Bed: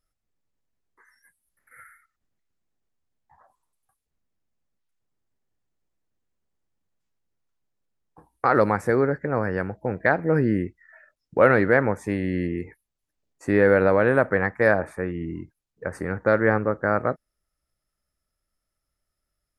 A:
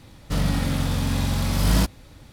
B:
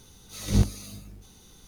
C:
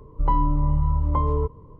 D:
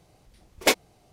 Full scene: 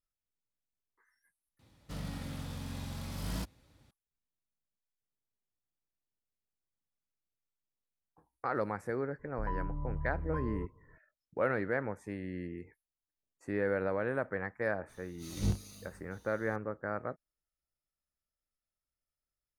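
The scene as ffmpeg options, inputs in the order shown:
-filter_complex "[0:a]volume=0.188[s0];[1:a]highpass=47[s1];[2:a]asplit=2[s2][s3];[s3]adelay=31,volume=0.335[s4];[s2][s4]amix=inputs=2:normalize=0[s5];[s0]asplit=2[s6][s7];[s6]atrim=end=1.594[s8];[s1]atrim=end=2.32,asetpts=PTS-STARTPTS,volume=0.141[s9];[s7]atrim=start=3.906[s10];[3:a]atrim=end=1.79,asetpts=PTS-STARTPTS,volume=0.15,afade=t=in:d=0.004:c=hsin,afade=t=out:st=1.786:d=0.004:c=hsin,adelay=9190[s11];[s5]atrim=end=1.67,asetpts=PTS-STARTPTS,volume=0.299,afade=t=in:d=0.004:c=hsin,afade=t=out:st=1.666:d=0.004:c=hsin,adelay=14890[s12];[s8][s9]acrossfade=d=0.004:c1=hsin:c2=hsin[s13];[s13][s10]acrossfade=d=0.004:c1=hsin:c2=hsin[s14];[s14][s11][s12]amix=inputs=3:normalize=0"

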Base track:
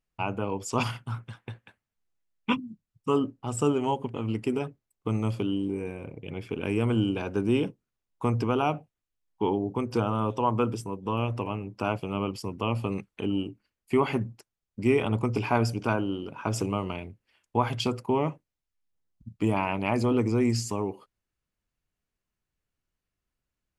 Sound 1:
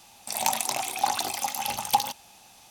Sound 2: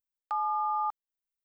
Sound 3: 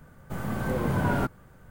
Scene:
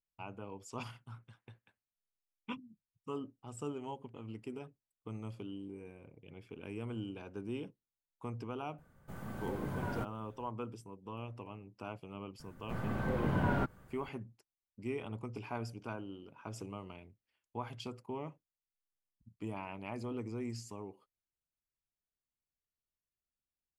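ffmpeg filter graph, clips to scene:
-filter_complex "[3:a]asplit=2[s0][s1];[0:a]volume=0.158[s2];[s1]acrossover=split=4400[s3][s4];[s4]acompressor=threshold=0.001:ratio=4:attack=1:release=60[s5];[s3][s5]amix=inputs=2:normalize=0[s6];[s0]atrim=end=1.7,asetpts=PTS-STARTPTS,volume=0.224,afade=t=in:d=0.004:c=hsin,afade=t=out:st=1.696:d=0.004:c=hsin,adelay=8780[s7];[s6]atrim=end=1.7,asetpts=PTS-STARTPTS,volume=0.501,afade=t=in:d=0.004:c=hsin,afade=t=out:st=1.696:d=0.004:c=hsin,adelay=12390[s8];[s2][s7][s8]amix=inputs=3:normalize=0"

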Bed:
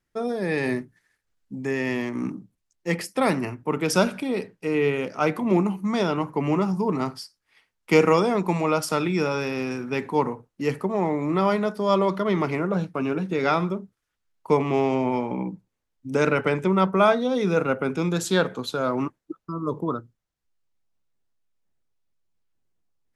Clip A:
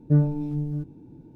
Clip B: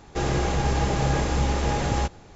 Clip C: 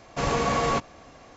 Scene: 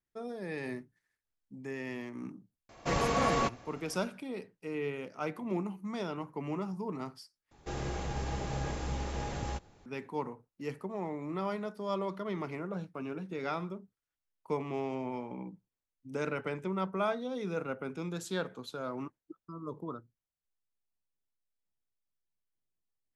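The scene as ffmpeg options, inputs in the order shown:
-filter_complex "[0:a]volume=0.211,asplit=2[s0][s1];[s0]atrim=end=7.514[s2];[2:a]atrim=end=2.35,asetpts=PTS-STARTPTS,volume=0.237[s3];[s1]atrim=start=9.856[s4];[3:a]atrim=end=1.36,asetpts=PTS-STARTPTS,volume=0.562,afade=t=in:d=0.004:c=hsin,afade=t=out:st=1.356:d=0.004:c=hsin,adelay=2690[s5];[s2][s3]acrossfade=d=0.004:c1=hsin:c2=hsin[s6];[s6][s4]acrossfade=d=0.004:c1=hsin:c2=hsin[s7];[s7][s5]amix=inputs=2:normalize=0"

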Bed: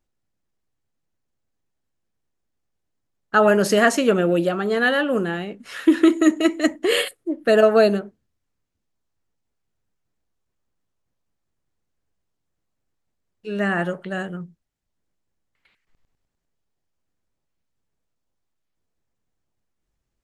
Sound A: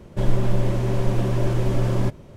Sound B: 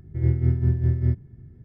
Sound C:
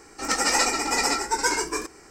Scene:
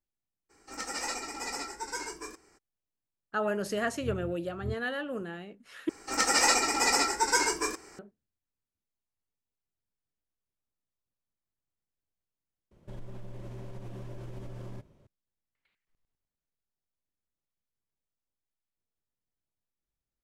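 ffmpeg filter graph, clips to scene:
-filter_complex "[3:a]asplit=2[s0][s1];[0:a]volume=0.188[s2];[2:a]aeval=exprs='val(0)*pow(10,-23*(0.5-0.5*cos(2*PI*1.8*n/s))/20)':c=same[s3];[s1]lowshelf=f=230:g=-5[s4];[1:a]acompressor=threshold=0.112:ratio=6:attack=3.2:release=140:knee=1:detection=peak[s5];[s2]asplit=3[s6][s7][s8];[s6]atrim=end=5.894[s9];[s4]atrim=end=2.1,asetpts=PTS-STARTPTS,volume=0.794[s10];[s7]atrim=start=7.986:end=12.714[s11];[s5]atrim=end=2.36,asetpts=PTS-STARTPTS,volume=0.133[s12];[s8]atrim=start=15.066[s13];[s0]atrim=end=2.1,asetpts=PTS-STARTPTS,volume=0.211,afade=t=in:d=0.02,afade=t=out:st=2.08:d=0.02,adelay=490[s14];[s3]atrim=end=1.64,asetpts=PTS-STARTPTS,volume=0.211,afade=t=in:d=0.004:c=hsin,afade=t=out:st=1.636:d=0.004:c=hsin,adelay=3600[s15];[s9][s10]acrossfade=d=0.004:c1=hsin:c2=hsin[s16];[s16][s11]acrossfade=d=0.004:c1=hsin:c2=hsin[s17];[s17][s12]acrossfade=d=0.004:c1=hsin:c2=hsin[s18];[s18][s13]acrossfade=d=0.004:c1=hsin:c2=hsin[s19];[s19][s14][s15]amix=inputs=3:normalize=0"

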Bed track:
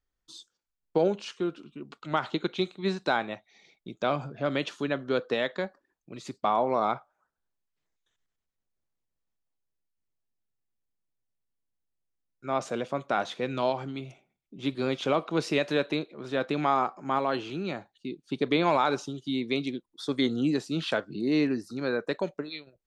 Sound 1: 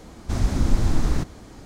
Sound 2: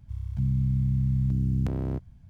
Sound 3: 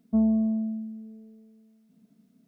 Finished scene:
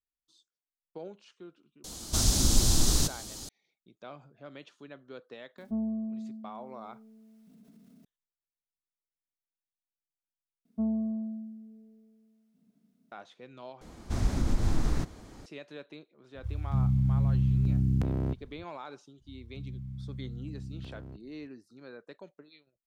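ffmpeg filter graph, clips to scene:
-filter_complex "[1:a]asplit=2[s0][s1];[3:a]asplit=2[s2][s3];[2:a]asplit=2[s4][s5];[0:a]volume=0.119[s6];[s0]aexciter=amount=8:drive=4.3:freq=3100[s7];[s2]acompressor=mode=upward:threshold=0.01:ratio=2.5:attack=24:release=21:knee=2.83:detection=peak[s8];[s1]alimiter=limit=0.335:level=0:latency=1:release=86[s9];[s6]asplit=3[s10][s11][s12];[s10]atrim=end=10.654[s13];[s3]atrim=end=2.47,asetpts=PTS-STARTPTS,volume=0.422[s14];[s11]atrim=start=13.116:end=13.814[s15];[s9]atrim=end=1.65,asetpts=PTS-STARTPTS,volume=0.501[s16];[s12]atrim=start=15.456[s17];[s7]atrim=end=1.65,asetpts=PTS-STARTPTS,volume=0.562,afade=t=in:d=0.004:c=hsin,afade=t=out:st=1.646:d=0.004:c=hsin,adelay=1840[s18];[s8]atrim=end=2.47,asetpts=PTS-STARTPTS,volume=0.335,afade=t=in:d=0.004:c=hsin,afade=t=out:st=2.466:d=0.004:c=hsin,adelay=5580[s19];[s4]atrim=end=2.29,asetpts=PTS-STARTPTS,volume=0.944,afade=t=in:d=0.004:c=hsin,afade=t=out:st=2.286:d=0.004:c=hsin,adelay=16350[s20];[s5]atrim=end=2.29,asetpts=PTS-STARTPTS,volume=0.168,afade=t=in:d=0.004:c=hsin,afade=t=out:st=2.286:d=0.004:c=hsin,adelay=19180[s21];[s13][s14]acrossfade=d=0.004:c1=hsin:c2=hsin[s22];[s22][s15]acrossfade=d=0.004:c1=hsin:c2=hsin[s23];[s23][s16]acrossfade=d=0.004:c1=hsin:c2=hsin[s24];[s24][s17]acrossfade=d=0.004:c1=hsin:c2=hsin[s25];[s25][s18][s19][s20][s21]amix=inputs=5:normalize=0"

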